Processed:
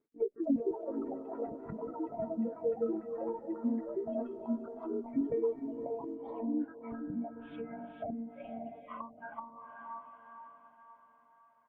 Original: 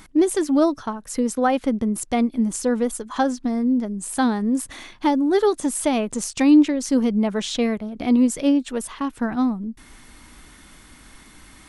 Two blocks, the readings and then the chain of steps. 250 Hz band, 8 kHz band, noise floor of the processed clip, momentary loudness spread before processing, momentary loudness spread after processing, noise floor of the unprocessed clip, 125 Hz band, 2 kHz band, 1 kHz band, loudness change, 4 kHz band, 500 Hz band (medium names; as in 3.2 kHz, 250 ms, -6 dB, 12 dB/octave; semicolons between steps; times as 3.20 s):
-17.5 dB, under -40 dB, -65 dBFS, 8 LU, 13 LU, -48 dBFS, no reading, -23.0 dB, -17.5 dB, -16.5 dB, under -35 dB, -12.0 dB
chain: monotone LPC vocoder at 8 kHz 230 Hz; spectral noise reduction 29 dB; low-pass 2.7 kHz 24 dB/octave; bass shelf 450 Hz +2 dB; comb 6.8 ms, depth 39%; compression 8:1, threshold -24 dBFS, peak gain reduction 14 dB; band-pass sweep 350 Hz -> 980 Hz, 6.31–9.36 s; echo that smears into a reverb 524 ms, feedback 47%, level -7 dB; ever faster or slower copies 314 ms, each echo +6 st, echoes 3; low-pass that closes with the level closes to 500 Hz, closed at -38 dBFS; trim +3 dB; Opus 48 kbps 48 kHz